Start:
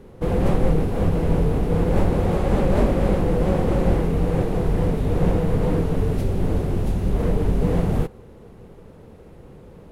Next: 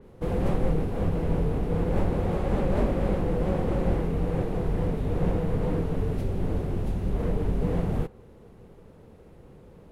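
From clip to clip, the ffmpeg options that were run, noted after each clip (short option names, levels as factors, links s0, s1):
-af "adynamicequalizer=threshold=0.00398:dfrequency=3900:dqfactor=0.7:tfrequency=3900:tqfactor=0.7:attack=5:release=100:ratio=0.375:range=2:mode=cutabove:tftype=highshelf,volume=0.501"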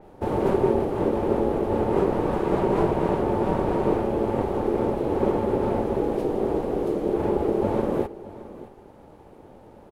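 -af "aeval=exprs='val(0)*sin(2*PI*390*n/s)':c=same,aecho=1:1:621:0.141,volume=1.68"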